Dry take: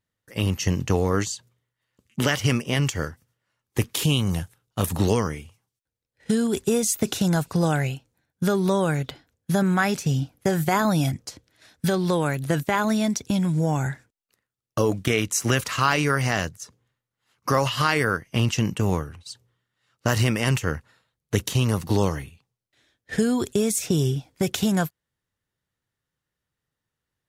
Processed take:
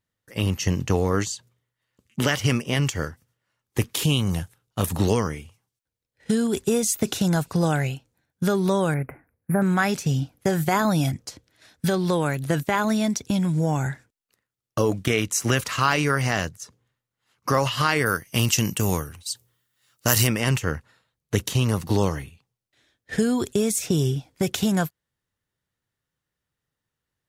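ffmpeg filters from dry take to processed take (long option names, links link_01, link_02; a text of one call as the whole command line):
ffmpeg -i in.wav -filter_complex "[0:a]asettb=1/sr,asplit=3[link_01][link_02][link_03];[link_01]atrim=end=8.944[link_04];[link_02]atrim=start=8.94:end=9.62,asetpts=PTS-STARTPTS,afade=type=in:duration=0.004:curve=qsin,afade=type=out:start_time=0.676:duration=0.004:curve=qsin,asuperstop=centerf=5000:order=20:qfactor=0.73[link_05];[link_03]atrim=start=9.616[link_06];[link_04][link_05]acrossfade=duration=0.004:curve1=hsin:curve2=qsin[link_07];[link_07][link_06]acrossfade=duration=0.004:curve1=qsin:curve2=hsin,asplit=3[link_08][link_09][link_10];[link_08]afade=type=out:start_time=18.05:duration=0.02[link_11];[link_09]aemphasis=mode=production:type=75fm,afade=type=in:start_time=18.05:duration=0.02,afade=type=out:start_time=20.26:duration=0.02[link_12];[link_10]afade=type=in:start_time=20.26:duration=0.02[link_13];[link_11][link_12][link_13]amix=inputs=3:normalize=0" out.wav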